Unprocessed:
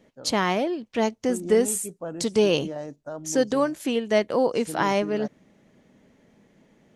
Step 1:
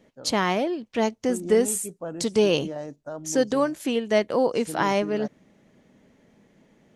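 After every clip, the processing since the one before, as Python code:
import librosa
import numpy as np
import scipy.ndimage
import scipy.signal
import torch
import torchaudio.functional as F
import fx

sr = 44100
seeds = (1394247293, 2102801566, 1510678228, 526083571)

y = x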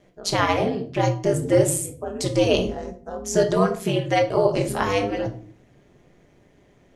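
y = x * np.sin(2.0 * np.pi * 97.0 * np.arange(len(x)) / sr)
y = fx.room_shoebox(y, sr, seeds[0], volume_m3=410.0, walls='furnished', distance_m=1.3)
y = y * librosa.db_to_amplitude(3.5)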